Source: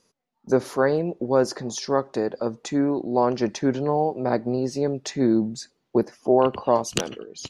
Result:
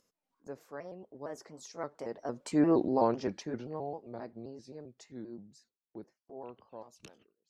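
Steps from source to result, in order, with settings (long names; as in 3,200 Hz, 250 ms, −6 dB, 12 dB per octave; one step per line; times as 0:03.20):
pitch shifter gated in a rhythm +2 semitones, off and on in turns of 123 ms
source passing by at 0:02.76, 24 m/s, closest 3.7 metres
noise gate with hold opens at −53 dBFS
upward compression, threshold −51 dBFS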